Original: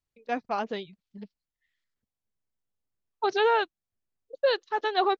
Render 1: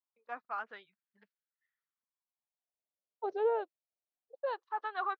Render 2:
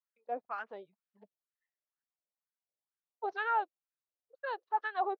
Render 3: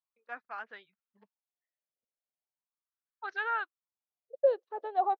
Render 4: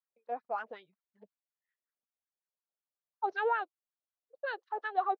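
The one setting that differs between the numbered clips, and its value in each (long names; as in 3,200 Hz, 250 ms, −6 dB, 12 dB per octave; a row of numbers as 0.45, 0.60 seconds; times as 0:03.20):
LFO wah, speed: 0.22, 2.1, 0.38, 5.4 Hertz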